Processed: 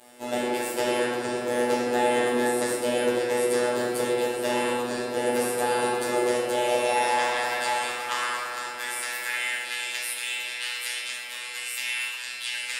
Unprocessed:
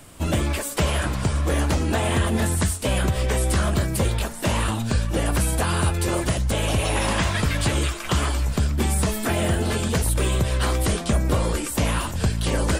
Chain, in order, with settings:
high-pass filter sweep 420 Hz → 2,400 Hz, 0:06.08–0:09.73
feedback delay with all-pass diffusion 938 ms, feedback 53%, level −15 dB
phases set to zero 122 Hz
convolution reverb RT60 2.4 s, pre-delay 3 ms, DRR −6.5 dB
level −7.5 dB

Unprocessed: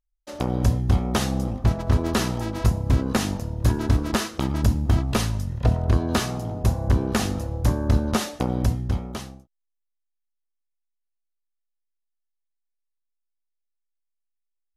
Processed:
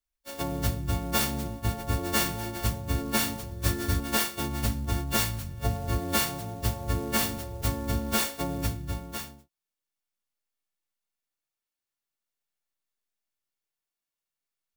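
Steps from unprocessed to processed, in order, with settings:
every partial snapped to a pitch grid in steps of 4 semitones
0:03.50–0:04.00: double-tracking delay 12 ms −2.5 dB
converter with an unsteady clock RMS 0.044 ms
level −7 dB

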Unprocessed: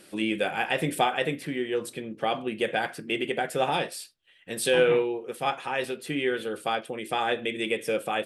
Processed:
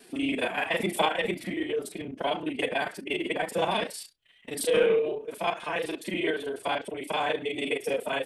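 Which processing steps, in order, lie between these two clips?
reversed piece by piece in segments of 32 ms
phase-vocoder pitch shift with formants kept +4 semitones

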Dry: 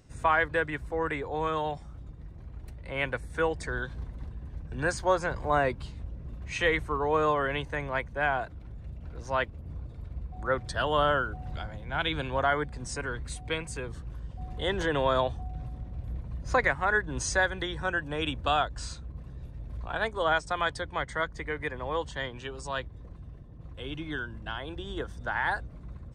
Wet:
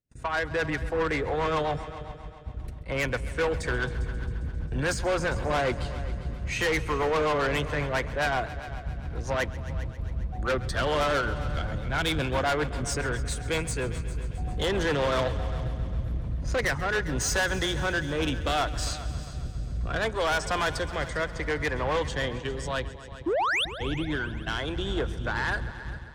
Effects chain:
noise gate −41 dBFS, range −30 dB
automatic gain control gain up to 10.5 dB
sound drawn into the spectrogram rise, 0:23.26–0:23.65, 300–3,900 Hz −20 dBFS
rotating-speaker cabinet horn 7.5 Hz, later 0.7 Hz, at 0:16.04
soft clipping −22.5 dBFS, distortion −7 dB
on a send: echo machine with several playback heads 134 ms, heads all three, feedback 49%, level −18.5 dB

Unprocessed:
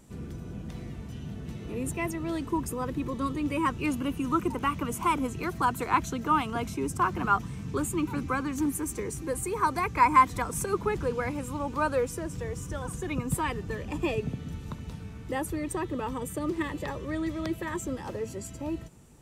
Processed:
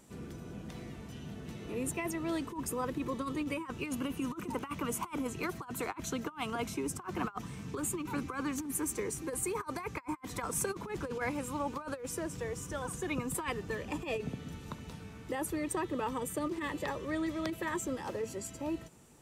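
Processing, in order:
low-shelf EQ 160 Hz −11.5 dB
compressor whose output falls as the input rises −32 dBFS, ratio −0.5
level −3 dB

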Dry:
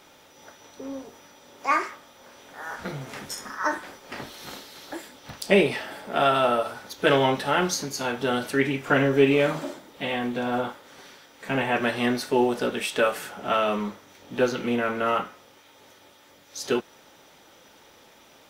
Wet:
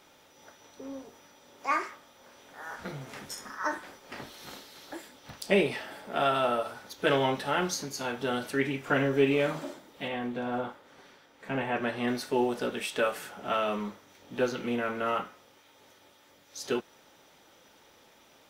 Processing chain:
0:10.08–0:12.08: high-shelf EQ 3,400 Hz −8.5 dB
level −5.5 dB

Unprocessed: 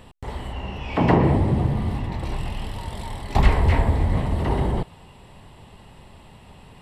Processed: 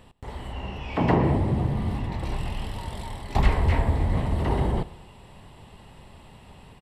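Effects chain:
automatic gain control gain up to 4 dB
repeating echo 89 ms, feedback 60%, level −20.5 dB
level −5.5 dB

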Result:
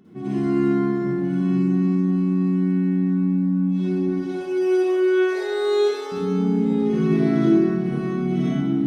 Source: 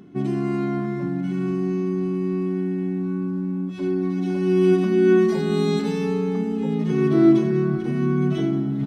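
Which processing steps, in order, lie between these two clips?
0:04.02–0:06.12: linear-phase brick-wall high-pass 310 Hz
convolution reverb RT60 1.3 s, pre-delay 47 ms, DRR −8.5 dB
level −8.5 dB

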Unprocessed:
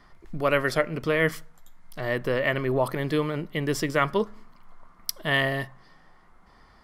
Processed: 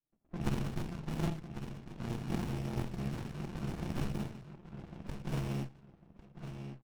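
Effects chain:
samples in bit-reversed order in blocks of 128 samples
leveller curve on the samples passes 2
on a send at −2 dB: convolution reverb RT60 0.45 s, pre-delay 3 ms
on the sum: flanger swept by the level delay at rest 7 ms, full sweep at −14 dBFS
power curve on the samples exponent 1.4
band-pass filter 220–4,700 Hz
repeating echo 1,100 ms, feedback 26%, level −8 dB
low-pass that shuts in the quiet parts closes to 680 Hz, open at −28.5 dBFS
windowed peak hold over 65 samples
level −2 dB

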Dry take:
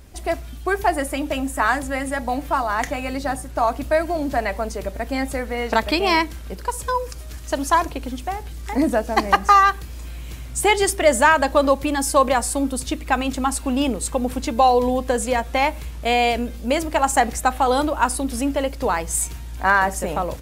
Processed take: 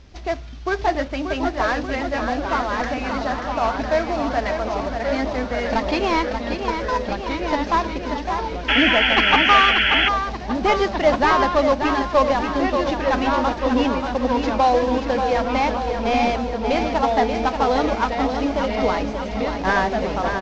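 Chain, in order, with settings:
variable-slope delta modulation 32 kbit/s
delay with pitch and tempo change per echo 652 ms, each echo −2 semitones, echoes 2, each echo −6 dB
on a send: repeating echo 584 ms, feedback 60%, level −7 dB
on the sum: sound drawn into the spectrogram noise, 0:08.68–0:10.09, 1,300–3,400 Hz −17 dBFS
level −1 dB

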